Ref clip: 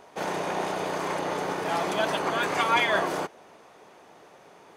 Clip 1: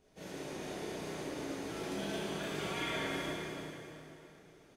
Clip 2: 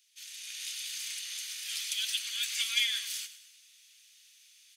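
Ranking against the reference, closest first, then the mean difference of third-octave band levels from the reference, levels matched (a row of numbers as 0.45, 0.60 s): 1, 2; 7.5, 22.5 dB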